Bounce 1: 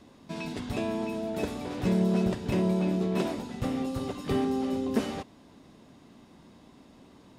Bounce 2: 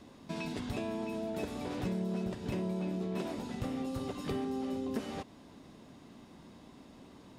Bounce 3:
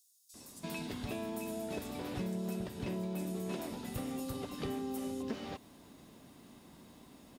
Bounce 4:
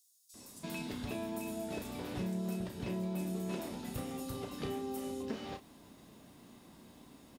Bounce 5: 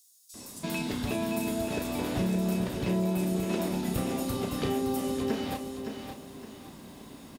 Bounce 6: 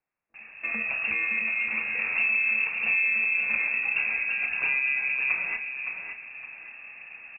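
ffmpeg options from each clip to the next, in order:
-af "acompressor=threshold=-35dB:ratio=3"
-filter_complex "[0:a]aemphasis=mode=production:type=50fm,acrossover=split=5700[a][b];[a]adelay=340[c];[c][b]amix=inputs=2:normalize=0,volume=-2.5dB"
-filter_complex "[0:a]asplit=2[a][b];[b]adelay=33,volume=-8dB[c];[a][c]amix=inputs=2:normalize=0,volume=-1dB"
-af "aecho=1:1:566|1132|1698|2264:0.447|0.143|0.0457|0.0146,volume=8.5dB"
-af "lowpass=f=2.4k:t=q:w=0.5098,lowpass=f=2.4k:t=q:w=0.6013,lowpass=f=2.4k:t=q:w=0.9,lowpass=f=2.4k:t=q:w=2.563,afreqshift=-2800,volume=3dB"

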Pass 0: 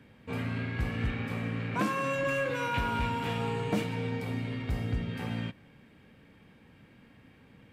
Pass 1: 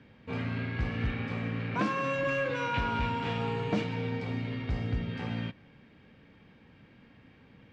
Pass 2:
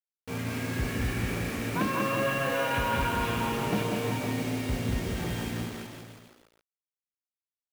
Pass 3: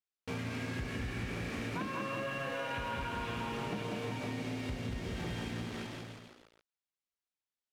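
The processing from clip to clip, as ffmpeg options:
-af "lowpass=f=5.8k:w=0.5412,lowpass=f=5.8k:w=1.3066"
-filter_complex "[0:a]asplit=2[a][b];[b]asplit=5[c][d][e][f][g];[c]adelay=158,afreqshift=130,volume=-9.5dB[h];[d]adelay=316,afreqshift=260,volume=-15.9dB[i];[e]adelay=474,afreqshift=390,volume=-22.3dB[j];[f]adelay=632,afreqshift=520,volume=-28.6dB[k];[g]adelay=790,afreqshift=650,volume=-35dB[l];[h][i][j][k][l]amix=inputs=5:normalize=0[m];[a][m]amix=inputs=2:normalize=0,acrusher=bits=6:mix=0:aa=0.000001,asplit=2[n][o];[o]aecho=0:1:190|361|514.9|653.4|778.1:0.631|0.398|0.251|0.158|0.1[p];[n][p]amix=inputs=2:normalize=0"
-af "lowpass=3.9k,aemphasis=mode=production:type=50fm,acompressor=threshold=-35dB:ratio=6"

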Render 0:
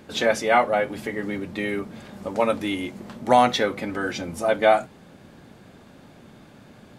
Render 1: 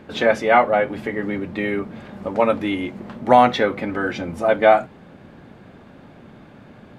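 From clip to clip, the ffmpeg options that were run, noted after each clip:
-af "bass=f=250:g=0,treble=f=4k:g=-14,volume=4dB"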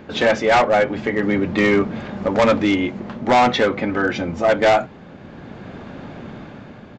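-af "dynaudnorm=f=180:g=7:m=6.5dB,aresample=16000,asoftclip=type=hard:threshold=-14dB,aresample=44100,volume=3.5dB"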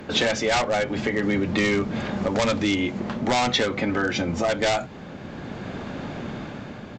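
-filter_complex "[0:a]asplit=2[a][b];[b]alimiter=limit=-16dB:level=0:latency=1:release=191,volume=3dB[c];[a][c]amix=inputs=2:normalize=0,aemphasis=mode=production:type=cd,acrossover=split=160|3000[d][e][f];[e]acompressor=threshold=-17dB:ratio=3[g];[d][g][f]amix=inputs=3:normalize=0,volume=-5.5dB"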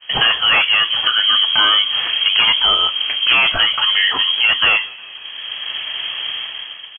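-filter_complex "[0:a]agate=range=-33dB:threshold=-32dB:ratio=3:detection=peak,asplit=5[a][b][c][d][e];[b]adelay=180,afreqshift=62,volume=-23.5dB[f];[c]adelay=360,afreqshift=124,volume=-27.8dB[g];[d]adelay=540,afreqshift=186,volume=-32.1dB[h];[e]adelay=720,afreqshift=248,volume=-36.4dB[i];[a][f][g][h][i]amix=inputs=5:normalize=0,lowpass=f=2.9k:t=q:w=0.5098,lowpass=f=2.9k:t=q:w=0.6013,lowpass=f=2.9k:t=q:w=0.9,lowpass=f=2.9k:t=q:w=2.563,afreqshift=-3400,volume=8.5dB"

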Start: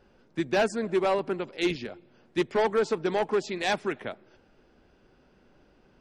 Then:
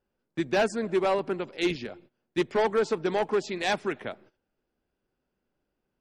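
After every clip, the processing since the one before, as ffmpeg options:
-af "agate=range=-20dB:threshold=-52dB:ratio=16:detection=peak"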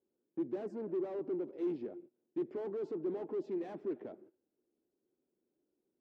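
-af "aeval=exprs='(tanh(50.1*val(0)+0.25)-tanh(0.25))/50.1':c=same,bandpass=f=340:t=q:w=2.9:csg=0,volume=4dB"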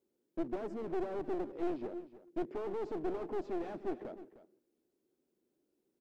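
-af "aeval=exprs='clip(val(0),-1,0.00596)':c=same,aecho=1:1:307:0.168,volume=3dB"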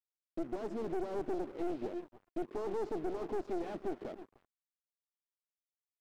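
-af "alimiter=level_in=6dB:limit=-24dB:level=0:latency=1:release=192,volume=-6dB,aeval=exprs='sgn(val(0))*max(abs(val(0))-0.00158,0)':c=same,volume=3.5dB"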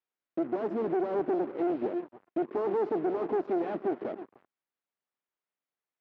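-af "highpass=180,lowpass=2.2k,volume=8.5dB"

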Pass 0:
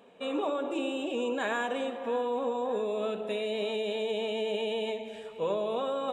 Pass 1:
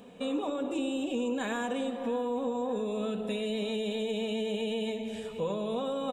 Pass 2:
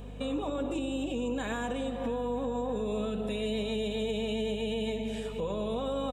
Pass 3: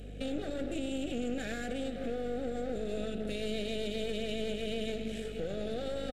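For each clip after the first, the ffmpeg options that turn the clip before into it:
-af "bass=f=250:g=14,treble=f=4k:g=8,aecho=1:1:4:0.3,acompressor=threshold=-36dB:ratio=2,volume=2dB"
-af "alimiter=level_in=2.5dB:limit=-24dB:level=0:latency=1:release=160,volume=-2.5dB,aeval=exprs='val(0)+0.00631*(sin(2*PI*50*n/s)+sin(2*PI*2*50*n/s)/2+sin(2*PI*3*50*n/s)/3+sin(2*PI*4*50*n/s)/4+sin(2*PI*5*50*n/s)/5)':c=same,aecho=1:1:935:0.0631,volume=2dB"
-af "aeval=exprs='clip(val(0),-1,0.00708)':c=same,asuperstop=centerf=1000:order=4:qfactor=1.4,aresample=32000,aresample=44100"

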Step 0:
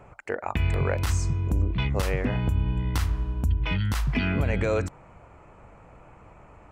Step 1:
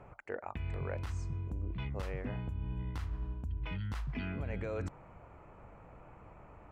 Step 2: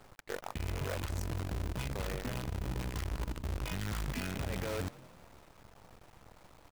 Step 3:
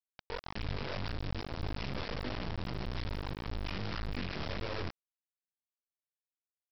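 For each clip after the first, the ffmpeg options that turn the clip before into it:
-af "lowpass=f=2.5k:p=1,areverse,acompressor=threshold=-31dB:ratio=6,areverse,volume=-4dB"
-filter_complex "[0:a]acrusher=bits=7:dc=4:mix=0:aa=0.000001,asplit=5[a][b][c][d][e];[b]adelay=175,afreqshift=42,volume=-22dB[f];[c]adelay=350,afreqshift=84,volume=-27dB[g];[d]adelay=525,afreqshift=126,volume=-32.1dB[h];[e]adelay=700,afreqshift=168,volume=-37.1dB[i];[a][f][g][h][i]amix=inputs=5:normalize=0"
-af "flanger=delay=19:depth=7.4:speed=1.7,aresample=11025,acrusher=bits=4:dc=4:mix=0:aa=0.000001,aresample=44100,volume=4.5dB"

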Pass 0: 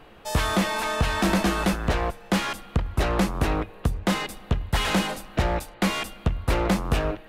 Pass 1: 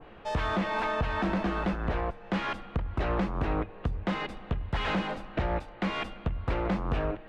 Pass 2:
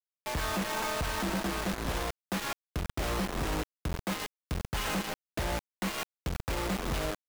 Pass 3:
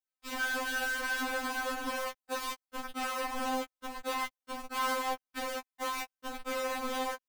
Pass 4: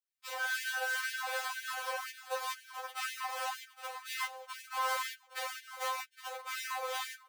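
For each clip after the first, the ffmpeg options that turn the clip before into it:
-af "lowpass=2.8k,alimiter=limit=-20dB:level=0:latency=1:release=224,adynamicequalizer=threshold=0.00562:dfrequency=1500:dqfactor=0.7:tfrequency=1500:tqfactor=0.7:attack=5:release=100:ratio=0.375:range=1.5:mode=cutabove:tftype=highshelf"
-af "acrusher=bits=4:mix=0:aa=0.000001,volume=-4dB"
-filter_complex "[0:a]acrossover=split=870|1200[a][b][c];[b]aeval=exprs='0.02*sin(PI/2*2.51*val(0)/0.02)':c=same[d];[a][d][c]amix=inputs=3:normalize=0,afftfilt=real='re*3.46*eq(mod(b,12),0)':imag='im*3.46*eq(mod(b,12),0)':win_size=2048:overlap=0.75"
-filter_complex "[0:a]acrossover=split=1100[a][b];[a]aeval=exprs='val(0)*(1-0.5/2+0.5/2*cos(2*PI*2.5*n/s))':c=same[c];[b]aeval=exprs='val(0)*(1-0.5/2-0.5/2*cos(2*PI*2.5*n/s))':c=same[d];[c][d]amix=inputs=2:normalize=0,aecho=1:1:814|1628|2442|3256:0.2|0.0858|0.0369|0.0159,afftfilt=real='re*gte(b*sr/1024,310*pow(1600/310,0.5+0.5*sin(2*PI*2*pts/sr)))':imag='im*gte(b*sr/1024,310*pow(1600/310,0.5+0.5*sin(2*PI*2*pts/sr)))':win_size=1024:overlap=0.75,volume=1.5dB"

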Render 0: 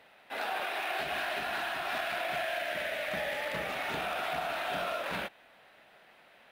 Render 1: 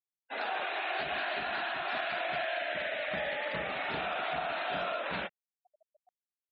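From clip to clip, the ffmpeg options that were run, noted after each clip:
-af "afftfilt=real='re*gte(hypot(re,im),0.00794)':imag='im*gte(hypot(re,im),0.00794)':win_size=1024:overlap=0.75,areverse,acompressor=mode=upward:threshold=-56dB:ratio=2.5,areverse"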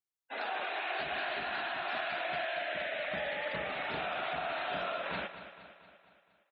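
-af "aecho=1:1:233|466|699|932|1165|1398:0.251|0.136|0.0732|0.0396|0.0214|0.0115,volume=-2dB"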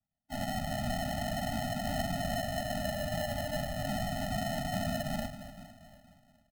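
-filter_complex "[0:a]asplit=4[a][b][c][d];[b]adelay=374,afreqshift=-140,volume=-21.5dB[e];[c]adelay=748,afreqshift=-280,volume=-28.4dB[f];[d]adelay=1122,afreqshift=-420,volume=-35.4dB[g];[a][e][f][g]amix=inputs=4:normalize=0,acrusher=samples=38:mix=1:aa=0.000001,afftfilt=real='re*eq(mod(floor(b*sr/1024/290),2),0)':imag='im*eq(mod(floor(b*sr/1024/290),2),0)':win_size=1024:overlap=0.75,volume=5.5dB"

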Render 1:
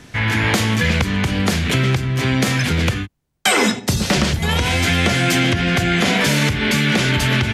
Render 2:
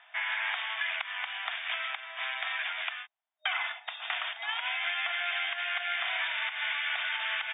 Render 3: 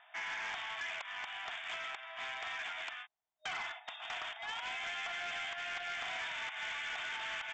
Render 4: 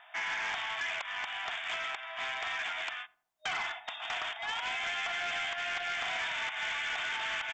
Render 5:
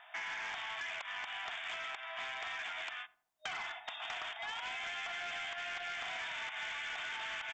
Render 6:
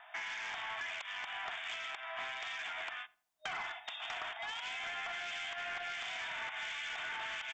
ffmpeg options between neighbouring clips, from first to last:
-filter_complex "[0:a]afftfilt=real='re*between(b*sr/4096,620,3700)':imag='im*between(b*sr/4096,620,3700)':win_size=4096:overlap=0.75,acrossover=split=1000|2800[a][b][c];[a]acompressor=threshold=-41dB:ratio=4[d];[b]acompressor=threshold=-22dB:ratio=4[e];[c]acompressor=threshold=-31dB:ratio=4[f];[d][e][f]amix=inputs=3:normalize=0,volume=-8.5dB"
-af "equalizer=f=2.7k:w=0.35:g=-9,aresample=16000,asoftclip=type=tanh:threshold=-38dB,aresample=44100,volume=3dB"
-filter_complex "[0:a]asplit=2[a][b];[b]adelay=86,lowpass=f=800:p=1,volume=-17dB,asplit=2[c][d];[d]adelay=86,lowpass=f=800:p=1,volume=0.48,asplit=2[e][f];[f]adelay=86,lowpass=f=800:p=1,volume=0.48,asplit=2[g][h];[h]adelay=86,lowpass=f=800:p=1,volume=0.48[i];[a][c][e][g][i]amix=inputs=5:normalize=0,volume=5.5dB"
-af "acompressor=threshold=-38dB:ratio=6,volume=-1dB"
-filter_complex "[0:a]acrossover=split=2200[a][b];[a]aeval=exprs='val(0)*(1-0.5/2+0.5/2*cos(2*PI*1.4*n/s))':c=same[c];[b]aeval=exprs='val(0)*(1-0.5/2-0.5/2*cos(2*PI*1.4*n/s))':c=same[d];[c][d]amix=inputs=2:normalize=0,volume=2.5dB"

